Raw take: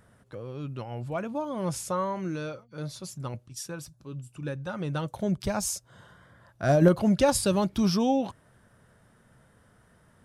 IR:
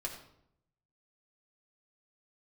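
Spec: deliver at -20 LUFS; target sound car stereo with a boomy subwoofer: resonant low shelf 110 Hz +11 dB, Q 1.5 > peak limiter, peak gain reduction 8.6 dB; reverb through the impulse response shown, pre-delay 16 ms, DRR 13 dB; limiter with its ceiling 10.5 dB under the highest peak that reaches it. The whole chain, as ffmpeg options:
-filter_complex "[0:a]alimiter=limit=0.119:level=0:latency=1,asplit=2[s0][s1];[1:a]atrim=start_sample=2205,adelay=16[s2];[s1][s2]afir=irnorm=-1:irlink=0,volume=0.211[s3];[s0][s3]amix=inputs=2:normalize=0,lowshelf=f=110:t=q:w=1.5:g=11,volume=5.31,alimiter=limit=0.355:level=0:latency=1"

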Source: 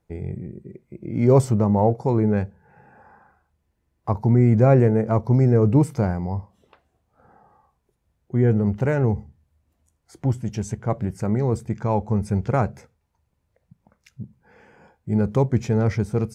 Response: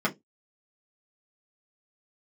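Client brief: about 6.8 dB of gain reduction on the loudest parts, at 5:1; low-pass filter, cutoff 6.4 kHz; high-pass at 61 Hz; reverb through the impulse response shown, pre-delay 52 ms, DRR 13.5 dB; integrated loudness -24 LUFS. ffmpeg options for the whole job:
-filter_complex "[0:a]highpass=61,lowpass=6400,acompressor=threshold=0.126:ratio=5,asplit=2[s0][s1];[1:a]atrim=start_sample=2205,adelay=52[s2];[s1][s2]afir=irnorm=-1:irlink=0,volume=0.0562[s3];[s0][s3]amix=inputs=2:normalize=0,volume=1.12"

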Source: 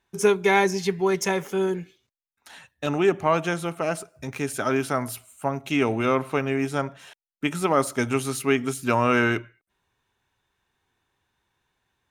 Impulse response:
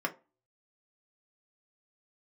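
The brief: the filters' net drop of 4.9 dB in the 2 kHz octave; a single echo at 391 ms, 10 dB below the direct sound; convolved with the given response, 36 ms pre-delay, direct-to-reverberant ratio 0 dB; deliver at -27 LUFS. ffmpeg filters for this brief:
-filter_complex "[0:a]equalizer=f=2000:t=o:g=-6.5,aecho=1:1:391:0.316,asplit=2[s0][s1];[1:a]atrim=start_sample=2205,adelay=36[s2];[s1][s2]afir=irnorm=-1:irlink=0,volume=0.473[s3];[s0][s3]amix=inputs=2:normalize=0,volume=0.596"

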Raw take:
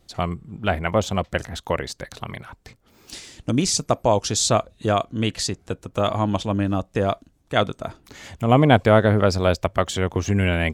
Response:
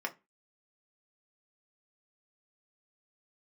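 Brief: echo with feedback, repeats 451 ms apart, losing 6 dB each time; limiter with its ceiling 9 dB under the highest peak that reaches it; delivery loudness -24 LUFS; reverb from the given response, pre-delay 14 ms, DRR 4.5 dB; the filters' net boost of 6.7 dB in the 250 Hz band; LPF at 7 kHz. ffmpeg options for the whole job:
-filter_complex "[0:a]lowpass=7000,equalizer=f=250:t=o:g=8.5,alimiter=limit=0.398:level=0:latency=1,aecho=1:1:451|902|1353|1804|2255|2706:0.501|0.251|0.125|0.0626|0.0313|0.0157,asplit=2[s0][s1];[1:a]atrim=start_sample=2205,adelay=14[s2];[s1][s2]afir=irnorm=-1:irlink=0,volume=0.376[s3];[s0][s3]amix=inputs=2:normalize=0,volume=0.596"

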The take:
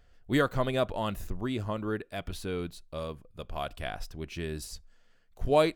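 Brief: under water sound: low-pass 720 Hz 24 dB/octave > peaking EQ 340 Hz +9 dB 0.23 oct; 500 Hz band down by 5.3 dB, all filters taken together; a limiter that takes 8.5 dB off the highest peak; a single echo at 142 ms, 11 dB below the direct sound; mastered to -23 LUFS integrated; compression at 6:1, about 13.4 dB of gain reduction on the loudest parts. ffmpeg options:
-af "equalizer=f=500:t=o:g=-7.5,acompressor=threshold=0.0141:ratio=6,alimiter=level_in=3.76:limit=0.0631:level=0:latency=1,volume=0.266,lowpass=f=720:w=0.5412,lowpass=f=720:w=1.3066,equalizer=f=340:t=o:w=0.23:g=9,aecho=1:1:142:0.282,volume=16.8"

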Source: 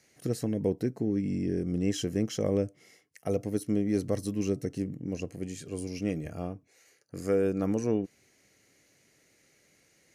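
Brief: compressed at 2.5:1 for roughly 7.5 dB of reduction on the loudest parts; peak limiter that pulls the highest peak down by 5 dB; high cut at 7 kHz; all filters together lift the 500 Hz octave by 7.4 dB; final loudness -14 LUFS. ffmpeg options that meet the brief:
-af "lowpass=7000,equalizer=f=500:t=o:g=8.5,acompressor=threshold=0.0447:ratio=2.5,volume=8.91,alimiter=limit=0.794:level=0:latency=1"

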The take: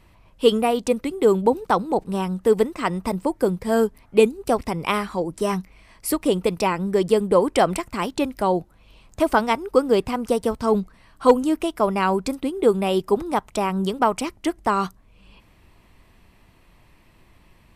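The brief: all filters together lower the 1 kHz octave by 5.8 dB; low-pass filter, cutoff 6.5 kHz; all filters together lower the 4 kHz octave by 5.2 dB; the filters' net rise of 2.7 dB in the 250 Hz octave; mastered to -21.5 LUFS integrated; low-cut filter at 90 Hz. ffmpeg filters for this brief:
-af "highpass=90,lowpass=6500,equalizer=f=250:t=o:g=4,equalizer=f=1000:t=o:g=-7.5,equalizer=f=4000:t=o:g=-6.5,volume=1.06"

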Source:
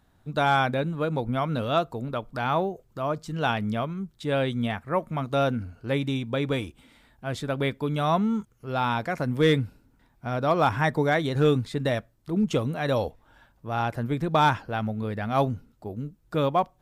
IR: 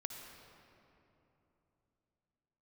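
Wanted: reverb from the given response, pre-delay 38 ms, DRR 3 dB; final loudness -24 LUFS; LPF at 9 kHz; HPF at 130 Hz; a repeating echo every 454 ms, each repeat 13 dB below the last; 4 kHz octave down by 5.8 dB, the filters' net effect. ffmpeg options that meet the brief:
-filter_complex "[0:a]highpass=130,lowpass=9000,equalizer=f=4000:t=o:g=-7,aecho=1:1:454|908|1362:0.224|0.0493|0.0108,asplit=2[s0][s1];[1:a]atrim=start_sample=2205,adelay=38[s2];[s1][s2]afir=irnorm=-1:irlink=0,volume=0.841[s3];[s0][s3]amix=inputs=2:normalize=0,volume=1.19"

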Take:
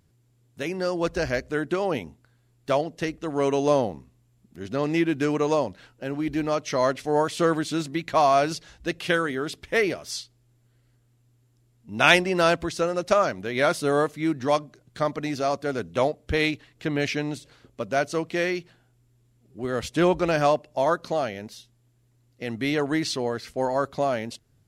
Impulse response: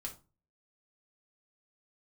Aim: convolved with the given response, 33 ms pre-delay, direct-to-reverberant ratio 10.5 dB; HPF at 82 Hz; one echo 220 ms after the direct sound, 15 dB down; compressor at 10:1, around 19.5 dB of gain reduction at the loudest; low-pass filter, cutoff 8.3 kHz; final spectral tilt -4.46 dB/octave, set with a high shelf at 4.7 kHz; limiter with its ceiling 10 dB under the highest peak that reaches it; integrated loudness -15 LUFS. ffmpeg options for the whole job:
-filter_complex "[0:a]highpass=82,lowpass=8300,highshelf=f=4700:g=4.5,acompressor=threshold=0.0282:ratio=10,alimiter=level_in=1.33:limit=0.0631:level=0:latency=1,volume=0.75,aecho=1:1:220:0.178,asplit=2[s0][s1];[1:a]atrim=start_sample=2205,adelay=33[s2];[s1][s2]afir=irnorm=-1:irlink=0,volume=0.376[s3];[s0][s3]amix=inputs=2:normalize=0,volume=13.3"

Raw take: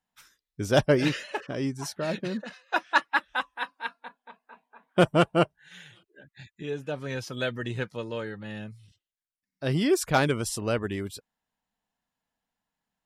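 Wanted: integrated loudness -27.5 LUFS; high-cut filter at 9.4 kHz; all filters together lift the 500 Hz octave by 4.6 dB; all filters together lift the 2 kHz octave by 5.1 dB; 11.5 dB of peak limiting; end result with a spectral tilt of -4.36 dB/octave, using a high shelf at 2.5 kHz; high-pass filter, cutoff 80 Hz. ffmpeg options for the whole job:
-af "highpass=80,lowpass=9400,equalizer=f=500:t=o:g=5.5,equalizer=f=2000:t=o:g=8.5,highshelf=f=2500:g=-4.5,volume=1.12,alimiter=limit=0.237:level=0:latency=1"

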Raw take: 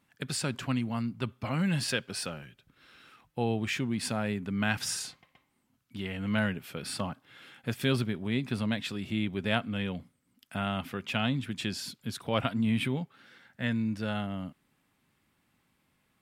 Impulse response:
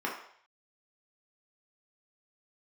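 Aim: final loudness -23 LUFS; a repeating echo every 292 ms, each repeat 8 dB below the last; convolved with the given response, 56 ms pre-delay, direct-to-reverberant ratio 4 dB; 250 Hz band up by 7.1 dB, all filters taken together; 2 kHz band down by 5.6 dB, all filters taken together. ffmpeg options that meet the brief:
-filter_complex "[0:a]equalizer=f=250:t=o:g=8.5,equalizer=f=2000:t=o:g=-8,aecho=1:1:292|584|876|1168|1460:0.398|0.159|0.0637|0.0255|0.0102,asplit=2[s0][s1];[1:a]atrim=start_sample=2205,adelay=56[s2];[s1][s2]afir=irnorm=-1:irlink=0,volume=0.266[s3];[s0][s3]amix=inputs=2:normalize=0,volume=1.5"

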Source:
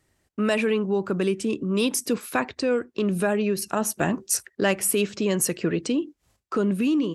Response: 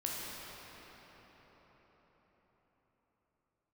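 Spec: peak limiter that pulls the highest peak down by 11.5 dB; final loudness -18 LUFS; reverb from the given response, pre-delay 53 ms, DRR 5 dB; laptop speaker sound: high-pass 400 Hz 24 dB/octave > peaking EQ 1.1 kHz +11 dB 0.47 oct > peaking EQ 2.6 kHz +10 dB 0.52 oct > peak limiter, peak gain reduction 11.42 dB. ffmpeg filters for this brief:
-filter_complex "[0:a]alimiter=limit=0.106:level=0:latency=1,asplit=2[s0][s1];[1:a]atrim=start_sample=2205,adelay=53[s2];[s1][s2]afir=irnorm=-1:irlink=0,volume=0.355[s3];[s0][s3]amix=inputs=2:normalize=0,highpass=f=400:w=0.5412,highpass=f=400:w=1.3066,equalizer=f=1100:t=o:w=0.47:g=11,equalizer=f=2600:t=o:w=0.52:g=10,volume=5.31,alimiter=limit=0.355:level=0:latency=1"

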